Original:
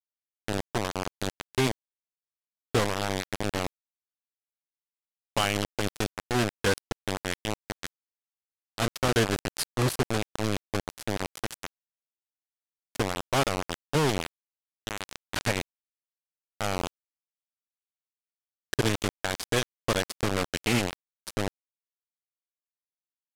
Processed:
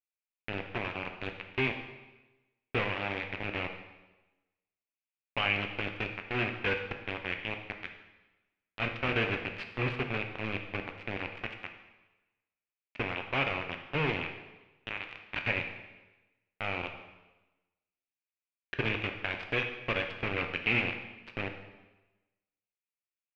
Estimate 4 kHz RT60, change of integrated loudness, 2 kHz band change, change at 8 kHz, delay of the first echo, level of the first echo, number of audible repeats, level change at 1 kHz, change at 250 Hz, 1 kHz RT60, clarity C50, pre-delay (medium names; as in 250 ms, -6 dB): 1.0 s, -4.0 dB, +1.5 dB, under -30 dB, no echo, no echo, no echo, -6.0 dB, -7.5 dB, 1.1 s, 7.5 dB, 5 ms